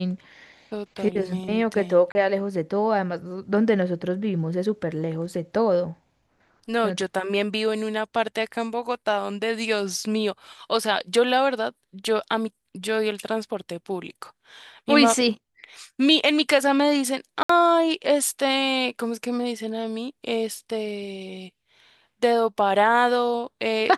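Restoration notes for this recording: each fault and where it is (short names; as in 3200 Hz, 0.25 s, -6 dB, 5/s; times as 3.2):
2.12–2.15 gap 30 ms
17.43–17.49 gap 64 ms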